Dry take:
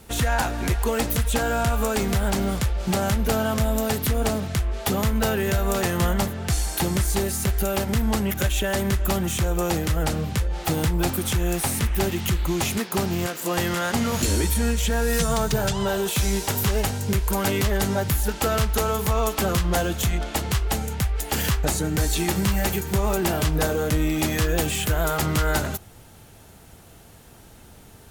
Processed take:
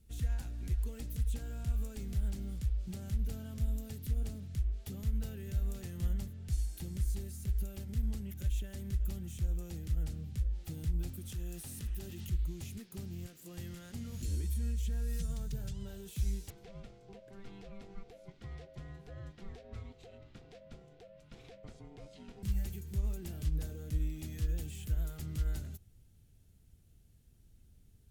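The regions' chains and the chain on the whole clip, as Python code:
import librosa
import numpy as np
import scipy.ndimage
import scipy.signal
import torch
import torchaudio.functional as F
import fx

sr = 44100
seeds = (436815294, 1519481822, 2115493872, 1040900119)

y = fx.chain(x, sr, fx.low_shelf(hz=180.0, db=-9.5),
    fx.notch(hz=2200.0, q=8.6),
    fx.env_flatten(amount_pct=70), at=(11.29, 12.27))
y = fx.chain(y, sr, fx.lowpass(hz=3300.0, slope=12),
    fx.ring_mod(carrier_hz=590.0), at=(16.5, 22.43))
y = fx.tone_stack(y, sr, knobs='10-0-1')
y = fx.upward_expand(y, sr, threshold_db=-33.0, expansion=1.5)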